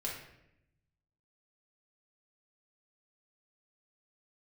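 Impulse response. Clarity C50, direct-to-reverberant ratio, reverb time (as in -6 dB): 3.0 dB, -4.5 dB, 0.80 s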